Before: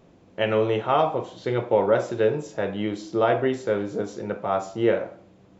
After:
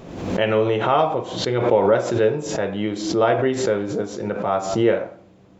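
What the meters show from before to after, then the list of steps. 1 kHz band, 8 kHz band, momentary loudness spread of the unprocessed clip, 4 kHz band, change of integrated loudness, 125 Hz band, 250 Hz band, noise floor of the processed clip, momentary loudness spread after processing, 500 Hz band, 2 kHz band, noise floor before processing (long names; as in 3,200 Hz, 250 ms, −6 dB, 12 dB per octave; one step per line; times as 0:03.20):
+3.5 dB, can't be measured, 9 LU, +7.0 dB, +3.5 dB, +4.5 dB, +4.5 dB, −50 dBFS, 8 LU, +3.5 dB, +3.5 dB, −54 dBFS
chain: background raised ahead of every attack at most 58 dB per second
level +2.5 dB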